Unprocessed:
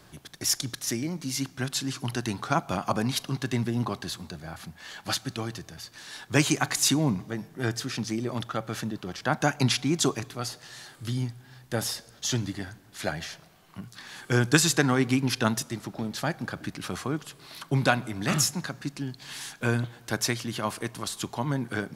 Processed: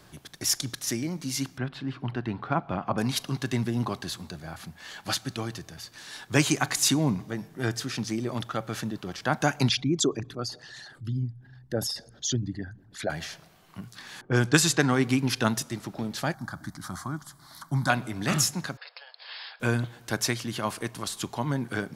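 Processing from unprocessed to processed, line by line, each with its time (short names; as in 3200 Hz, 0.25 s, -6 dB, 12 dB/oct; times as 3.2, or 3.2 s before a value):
1.58–2.98 air absorption 420 m
9.69–13.1 formant sharpening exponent 2
14.21–14.93 low-pass opened by the level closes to 500 Hz, open at -17.5 dBFS
16.34–17.9 fixed phaser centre 1100 Hz, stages 4
18.77–19.6 brick-wall FIR band-pass 450–5300 Hz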